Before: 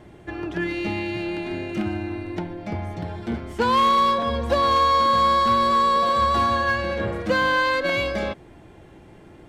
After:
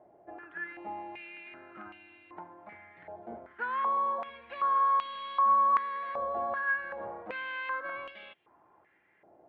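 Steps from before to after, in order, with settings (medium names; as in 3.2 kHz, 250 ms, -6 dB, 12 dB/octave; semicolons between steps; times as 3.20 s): distance through air 490 m; step-sequenced band-pass 2.6 Hz 680–3000 Hz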